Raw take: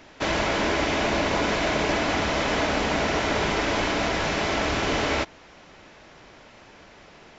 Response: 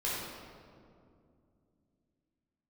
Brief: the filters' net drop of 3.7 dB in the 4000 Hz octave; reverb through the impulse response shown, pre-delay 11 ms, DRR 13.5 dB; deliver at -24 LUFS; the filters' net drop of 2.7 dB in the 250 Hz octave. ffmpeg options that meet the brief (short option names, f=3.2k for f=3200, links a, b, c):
-filter_complex "[0:a]equalizer=f=250:t=o:g=-3.5,equalizer=f=4k:t=o:g=-5,asplit=2[a][b];[1:a]atrim=start_sample=2205,adelay=11[c];[b][c]afir=irnorm=-1:irlink=0,volume=-20dB[d];[a][d]amix=inputs=2:normalize=0,volume=1.5dB"